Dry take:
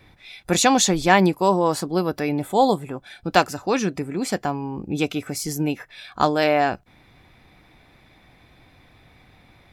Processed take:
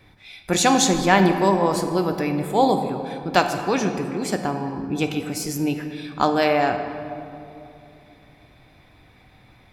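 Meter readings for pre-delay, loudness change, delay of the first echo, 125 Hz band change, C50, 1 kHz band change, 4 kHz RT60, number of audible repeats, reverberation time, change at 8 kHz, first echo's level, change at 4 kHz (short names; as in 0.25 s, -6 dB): 11 ms, 0.0 dB, none, +0.5 dB, 7.5 dB, 0.0 dB, 1.5 s, none, 2.8 s, -0.5 dB, none, -0.5 dB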